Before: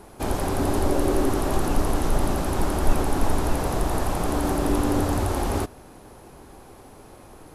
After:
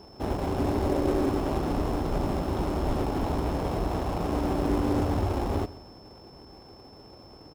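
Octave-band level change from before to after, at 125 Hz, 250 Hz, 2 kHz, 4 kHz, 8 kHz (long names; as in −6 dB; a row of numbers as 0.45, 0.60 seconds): −2.5, −2.5, −7.0, −6.0, −14.5 decibels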